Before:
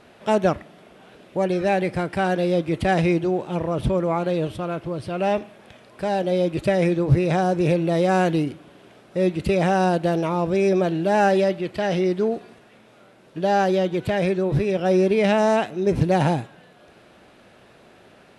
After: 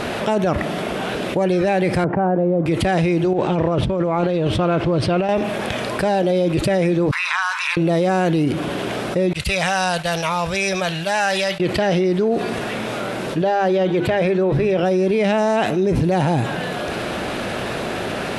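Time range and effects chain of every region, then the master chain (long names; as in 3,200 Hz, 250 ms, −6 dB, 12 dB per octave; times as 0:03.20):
0:02.04–0:02.66: Chebyshev band-pass filter 130–940 Hz + high-frequency loss of the air 220 metres
0:03.33–0:05.29: compressor whose output falls as the input rises −26 dBFS, ratio −0.5 + high-frequency loss of the air 73 metres
0:07.11–0:07.77: Chebyshev high-pass filter 980 Hz, order 6 + high-shelf EQ 3,200 Hz −12 dB
0:09.33–0:11.60: guitar amp tone stack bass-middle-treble 10-0-10 + downward expander −38 dBFS
0:13.42–0:14.83: bass and treble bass −4 dB, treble −8 dB + mains-hum notches 50/100/150/200/250/300/350 Hz
whole clip: brickwall limiter −18 dBFS; envelope flattener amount 70%; level +6 dB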